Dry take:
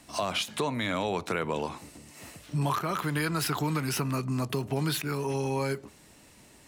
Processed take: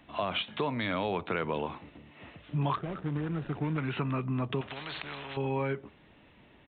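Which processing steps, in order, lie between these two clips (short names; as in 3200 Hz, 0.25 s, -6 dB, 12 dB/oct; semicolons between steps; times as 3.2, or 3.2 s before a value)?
2.76–3.78 median filter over 41 samples; downsampling 8000 Hz; 4.61–5.37 spectral compressor 4:1; gain -1.5 dB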